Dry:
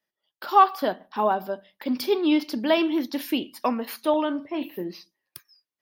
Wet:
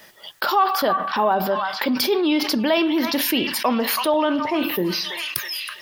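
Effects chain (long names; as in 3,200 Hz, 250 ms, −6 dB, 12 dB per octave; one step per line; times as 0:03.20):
parametric band 280 Hz −4.5 dB 0.77 octaves
echo through a band-pass that steps 327 ms, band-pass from 1,400 Hz, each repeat 0.7 octaves, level −12 dB
envelope flattener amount 70%
level −3 dB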